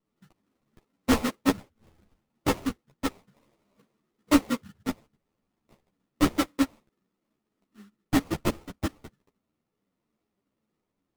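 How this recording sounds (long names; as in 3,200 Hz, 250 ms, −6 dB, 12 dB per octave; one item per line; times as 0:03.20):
phaser sweep stages 4, 0.32 Hz, lowest notch 510–1,700 Hz
aliases and images of a low sample rate 1,600 Hz, jitter 20%
a shimmering, thickened sound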